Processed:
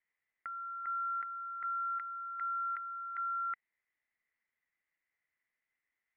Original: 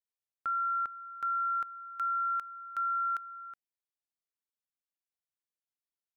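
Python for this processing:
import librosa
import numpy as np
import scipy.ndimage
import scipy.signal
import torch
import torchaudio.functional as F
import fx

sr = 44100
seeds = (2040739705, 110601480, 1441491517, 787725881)

y = fx.over_compress(x, sr, threshold_db=-41.0, ratio=-1.0)
y = fx.lowpass_res(y, sr, hz=2000.0, q=13.0)
y = F.gain(torch.from_numpy(y), -3.0).numpy()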